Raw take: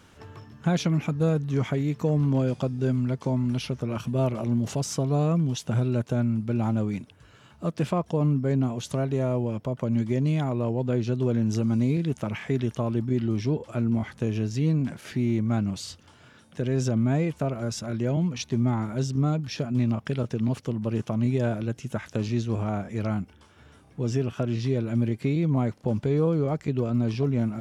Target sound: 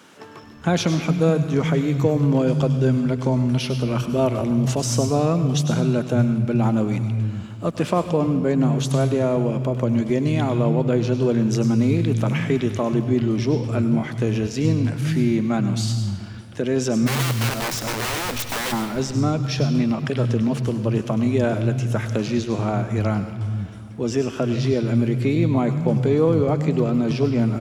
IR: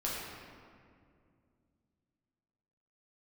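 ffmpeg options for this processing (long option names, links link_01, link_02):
-filter_complex "[0:a]asplit=3[link_01][link_02][link_03];[link_01]afade=type=out:start_time=17.06:duration=0.02[link_04];[link_02]aeval=exprs='(mod(23.7*val(0)+1,2)-1)/23.7':channel_layout=same,afade=type=in:start_time=17.06:duration=0.02,afade=type=out:start_time=18.71:duration=0.02[link_05];[link_03]afade=type=in:start_time=18.71:duration=0.02[link_06];[link_04][link_05][link_06]amix=inputs=3:normalize=0,acrossover=split=160[link_07][link_08];[link_07]adelay=430[link_09];[link_09][link_08]amix=inputs=2:normalize=0,asplit=2[link_10][link_11];[1:a]atrim=start_sample=2205,highshelf=frequency=2400:gain=11.5,adelay=99[link_12];[link_11][link_12]afir=irnorm=-1:irlink=0,volume=-18dB[link_13];[link_10][link_13]amix=inputs=2:normalize=0,volume=7dB"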